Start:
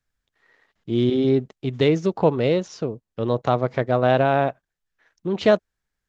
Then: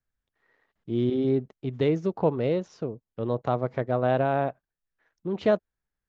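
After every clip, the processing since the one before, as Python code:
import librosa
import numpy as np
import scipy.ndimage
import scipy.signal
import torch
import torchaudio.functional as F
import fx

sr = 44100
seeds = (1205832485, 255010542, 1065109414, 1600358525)

y = fx.high_shelf(x, sr, hz=2500.0, db=-10.0)
y = F.gain(torch.from_numpy(y), -5.0).numpy()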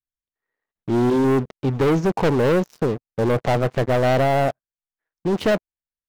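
y = fx.rider(x, sr, range_db=3, speed_s=2.0)
y = fx.leveller(y, sr, passes=5)
y = F.gain(torch.from_numpy(y), -4.0).numpy()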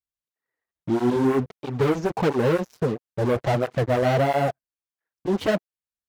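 y = fx.flanger_cancel(x, sr, hz=1.5, depth_ms=7.3)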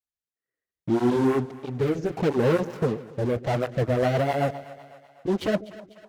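y = fx.echo_split(x, sr, split_hz=650.0, low_ms=141, high_ms=248, feedback_pct=52, wet_db=-16.0)
y = fx.rotary_switch(y, sr, hz=0.65, then_hz=8.0, switch_at_s=3.28)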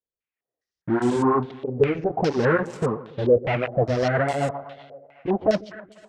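y = fx.filter_held_lowpass(x, sr, hz=4.9, low_hz=500.0, high_hz=8000.0)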